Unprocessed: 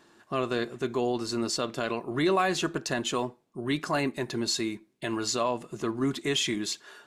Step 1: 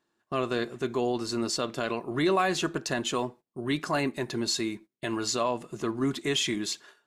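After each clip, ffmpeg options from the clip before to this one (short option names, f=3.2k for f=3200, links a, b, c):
-af "agate=range=-18dB:threshold=-46dB:ratio=16:detection=peak"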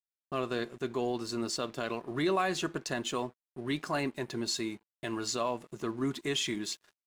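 -af "aeval=exprs='sgn(val(0))*max(abs(val(0))-0.00266,0)':c=same,volume=-4dB"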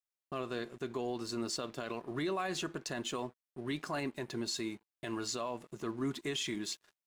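-af "alimiter=level_in=0.5dB:limit=-24dB:level=0:latency=1:release=47,volume=-0.5dB,volume=-2.5dB"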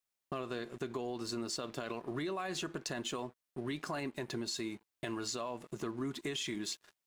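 -af "acompressor=threshold=-41dB:ratio=4,volume=5dB"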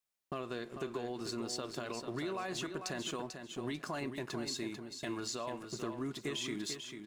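-af "aecho=1:1:443|886|1329:0.422|0.097|0.0223,volume=-1dB"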